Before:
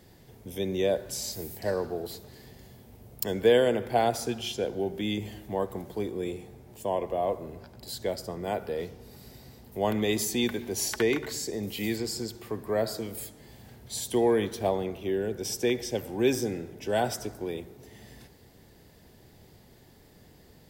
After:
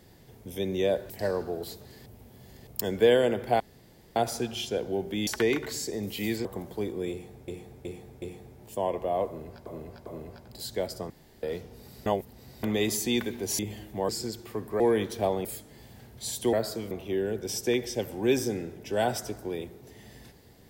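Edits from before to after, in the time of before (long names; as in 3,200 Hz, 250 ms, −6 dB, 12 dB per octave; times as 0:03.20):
0:01.10–0:01.53: remove
0:02.49–0:03.10: reverse
0:04.03: splice in room tone 0.56 s
0:05.14–0:05.64: swap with 0:10.87–0:12.05
0:06.30–0:06.67: repeat, 4 plays
0:07.34–0:07.74: repeat, 3 plays
0:08.38–0:08.71: fill with room tone
0:09.34–0:09.91: reverse
0:12.76–0:13.14: swap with 0:14.22–0:14.87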